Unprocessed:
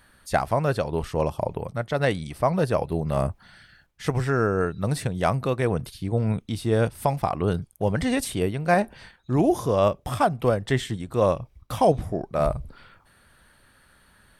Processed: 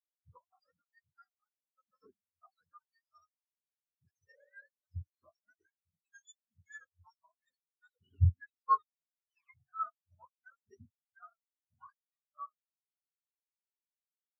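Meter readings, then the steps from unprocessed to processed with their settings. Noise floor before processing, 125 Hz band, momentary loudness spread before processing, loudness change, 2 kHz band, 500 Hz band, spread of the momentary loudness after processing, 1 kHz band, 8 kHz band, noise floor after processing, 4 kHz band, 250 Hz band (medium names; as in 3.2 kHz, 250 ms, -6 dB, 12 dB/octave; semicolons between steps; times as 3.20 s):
-59 dBFS, -14.5 dB, 7 LU, -10.5 dB, -24.5 dB, under -40 dB, 22 LU, -13.5 dB, under -25 dB, under -85 dBFS, under -35 dB, under -35 dB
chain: spectrum inverted on a logarithmic axis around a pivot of 870 Hz; spectral contrast expander 4:1; trim -7 dB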